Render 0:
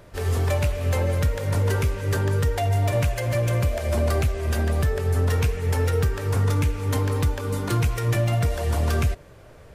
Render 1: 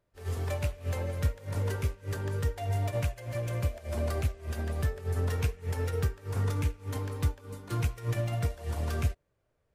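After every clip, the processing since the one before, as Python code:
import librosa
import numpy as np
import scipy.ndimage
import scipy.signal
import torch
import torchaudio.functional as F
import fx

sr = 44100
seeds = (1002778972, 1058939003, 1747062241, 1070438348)

y = fx.upward_expand(x, sr, threshold_db=-34.0, expansion=2.5)
y = y * librosa.db_to_amplitude(-4.0)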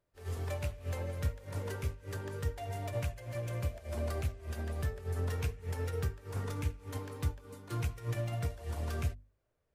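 y = fx.hum_notches(x, sr, base_hz=50, count=5)
y = y * librosa.db_to_amplitude(-4.5)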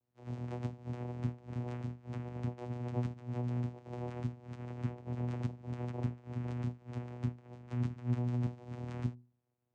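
y = fx.volume_shaper(x, sr, bpm=132, per_beat=1, depth_db=-3, release_ms=67.0, shape='slow start')
y = fx.peak_eq(y, sr, hz=260.0, db=-3.5, octaves=1.9)
y = fx.vocoder(y, sr, bands=4, carrier='saw', carrier_hz=122.0)
y = y * librosa.db_to_amplitude(4.0)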